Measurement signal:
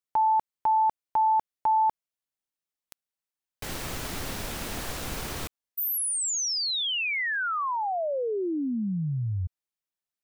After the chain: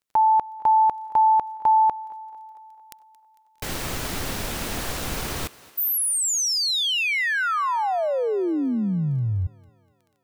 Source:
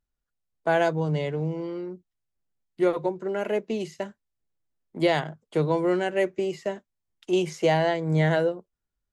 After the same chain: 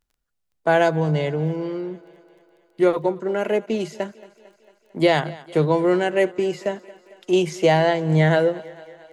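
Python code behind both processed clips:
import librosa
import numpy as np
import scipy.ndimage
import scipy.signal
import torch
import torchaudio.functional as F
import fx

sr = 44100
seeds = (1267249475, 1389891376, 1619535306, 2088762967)

y = fx.echo_thinned(x, sr, ms=225, feedback_pct=65, hz=230.0, wet_db=-20)
y = fx.dmg_crackle(y, sr, seeds[0], per_s=12.0, level_db=-53.0)
y = y * 10.0 ** (5.0 / 20.0)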